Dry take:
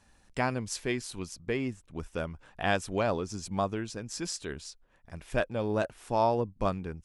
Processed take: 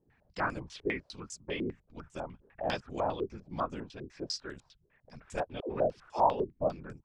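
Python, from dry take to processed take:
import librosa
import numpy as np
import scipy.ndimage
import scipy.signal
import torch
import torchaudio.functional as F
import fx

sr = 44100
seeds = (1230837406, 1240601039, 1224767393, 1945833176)

y = fx.whisperise(x, sr, seeds[0])
y = fx.dispersion(y, sr, late='lows', ms=87.0, hz=470.0, at=(5.6, 6.19))
y = fx.filter_held_lowpass(y, sr, hz=10.0, low_hz=400.0, high_hz=7400.0)
y = y * 10.0 ** (-7.5 / 20.0)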